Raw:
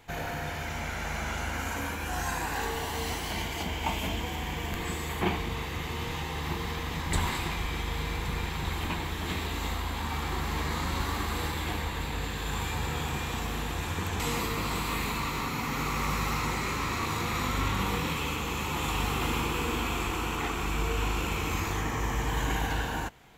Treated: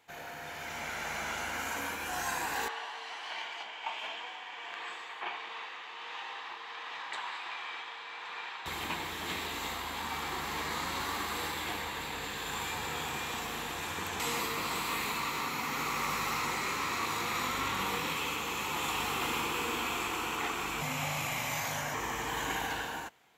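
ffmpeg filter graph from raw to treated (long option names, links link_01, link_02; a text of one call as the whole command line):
ffmpeg -i in.wav -filter_complex "[0:a]asettb=1/sr,asplit=3[link_01][link_02][link_03];[link_01]atrim=end=2.684[link_04];[link_02]atrim=start=2.68:end=8.66,asetpts=PTS-STARTPTS,afade=type=in:duration=0.004:curve=qsin,afade=type=out:start_time=5.976:duration=0.004:curve=qsin,bandreject=frequency=2100:width=15,tremolo=f=1.4:d=0.31,highpass=790,lowpass=3300[link_05];[link_03]atrim=start=8.656[link_06];[link_04][link_05]acrossfade=duration=0.004:curve1=hsin:curve2=qsin[link_07];[link_07][link_06]acrossfade=duration=0.004:curve1=qsin:curve2=hsin,asettb=1/sr,asplit=3[link_08][link_09][link_10];[link_08]atrim=end=20.814[link_11];[link_09]atrim=start=20.81:end=21.94,asetpts=PTS-STARTPTS,afade=type=in:duration=0.004:curve=qsin,afade=type=out:start_time=1.126:duration=0.004:curve=qsin,highshelf=frequency=5500:gain=4,afreqshift=-200[link_12];[link_10]atrim=start=21.936[link_13];[link_11][link_12]acrossfade=duration=0.004:curve1=hsin:curve2=qsin[link_14];[link_14][link_13]acrossfade=duration=0.004:curve1=qsin:curve2=hsin,dynaudnorm=framelen=180:gausssize=7:maxgain=7dB,highpass=frequency=500:poles=1,volume=-7.5dB" out.wav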